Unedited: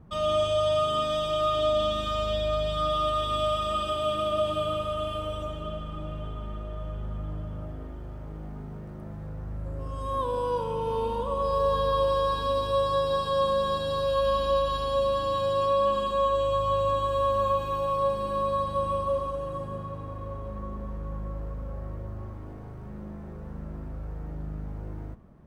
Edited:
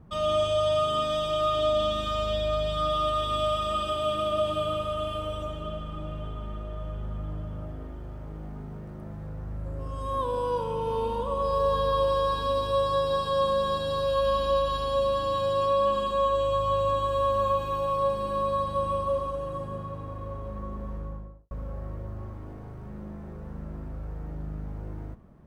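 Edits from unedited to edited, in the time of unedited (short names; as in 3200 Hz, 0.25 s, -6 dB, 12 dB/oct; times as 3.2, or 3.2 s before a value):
20.94–21.51 studio fade out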